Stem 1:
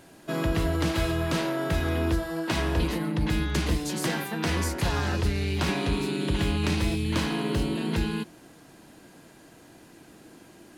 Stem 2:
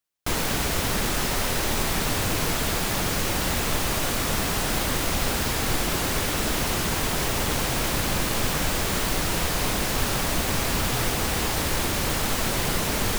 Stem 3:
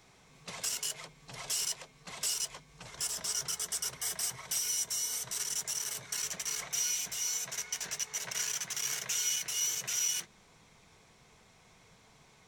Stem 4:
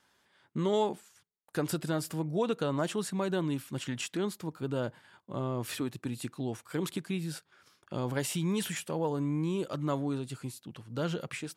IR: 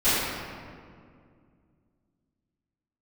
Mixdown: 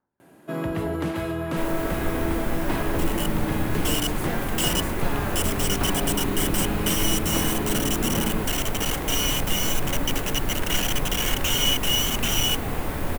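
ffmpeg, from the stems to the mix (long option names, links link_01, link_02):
-filter_complex "[0:a]highpass=110,adelay=200,volume=0.5dB[link_01];[1:a]adelay=1300,volume=-11.5dB,asplit=2[link_02][link_03];[link_03]volume=-10dB[link_04];[2:a]equalizer=frequency=3000:width_type=o:width=0.39:gain=13.5,dynaudnorm=framelen=140:gausssize=21:maxgain=8.5dB,acrusher=bits=3:mix=0:aa=0.5,adelay=2350,volume=3dB[link_05];[3:a]lowpass=1200,aphaser=in_gain=1:out_gain=1:delay=1.8:decay=0.64:speed=1.1:type=sinusoidal,volume=-14.5dB,asplit=2[link_06][link_07];[link_07]volume=-19.5dB[link_08];[4:a]atrim=start_sample=2205[link_09];[link_04][link_08]amix=inputs=2:normalize=0[link_10];[link_10][link_09]afir=irnorm=-1:irlink=0[link_11];[link_01][link_02][link_05][link_06][link_11]amix=inputs=5:normalize=0,equalizer=frequency=5100:width=0.73:gain=-12.5"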